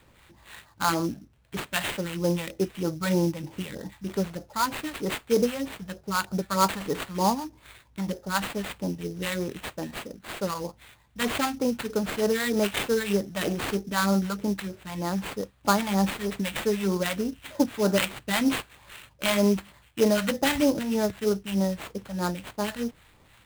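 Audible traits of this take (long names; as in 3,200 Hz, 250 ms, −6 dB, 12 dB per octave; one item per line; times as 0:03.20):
phaser sweep stages 2, 3.2 Hz, lowest notch 340–3,700 Hz
aliases and images of a low sample rate 5,700 Hz, jitter 20%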